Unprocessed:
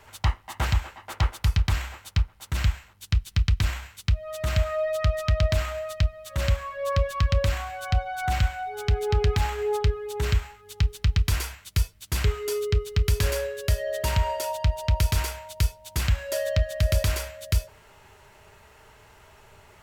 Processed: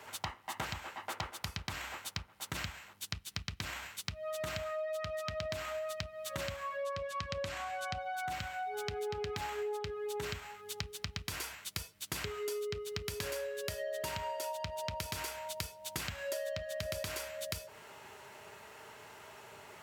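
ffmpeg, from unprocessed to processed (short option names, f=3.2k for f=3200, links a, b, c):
-filter_complex "[0:a]asettb=1/sr,asplit=3[a][b][c];[a]atrim=end=6.844[d];[b]atrim=start=6.84:end=7.97,asetpts=PTS-STARTPTS,afade=t=in:d=0.004:c=qsin,afade=t=out:st=1.126:d=0.004:c=qsin,lowpass=11k[e];[c]atrim=start=7.966[f];[d][e]acrossfade=d=0.004:c1=hsin:c2=qsin[g];[g][f]acrossfade=d=0.004:c1=qsin:c2=hsin,highpass=180,acompressor=threshold=-38dB:ratio=6,volume=1.5dB"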